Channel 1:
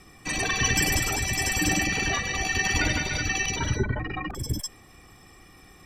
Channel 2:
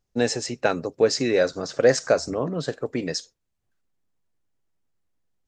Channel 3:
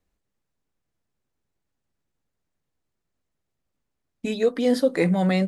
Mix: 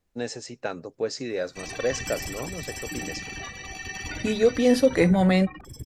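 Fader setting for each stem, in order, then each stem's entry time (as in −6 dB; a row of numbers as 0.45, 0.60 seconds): −10.5, −9.0, +1.5 decibels; 1.30, 0.00, 0.00 seconds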